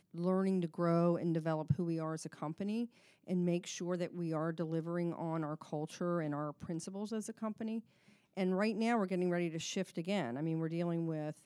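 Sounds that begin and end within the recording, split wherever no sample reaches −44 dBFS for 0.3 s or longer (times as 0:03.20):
0:03.28–0:07.80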